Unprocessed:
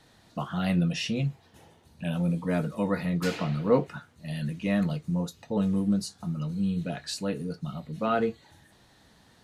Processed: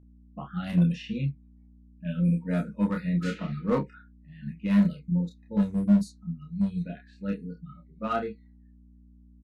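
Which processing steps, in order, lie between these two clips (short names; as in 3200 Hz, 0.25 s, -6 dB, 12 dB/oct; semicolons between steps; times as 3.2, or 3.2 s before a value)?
thirty-one-band EQ 200 Hz +7 dB, 1250 Hz +4 dB, 5000 Hz -5 dB; spectral noise reduction 24 dB; bell 410 Hz -3.5 dB 0.33 oct; overloaded stage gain 16.5 dB; low-pass opened by the level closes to 760 Hz, open at -19 dBFS; hum 60 Hz, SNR 18 dB; doubler 29 ms -3 dB; upward expander 1.5:1, over -32 dBFS; gain -1.5 dB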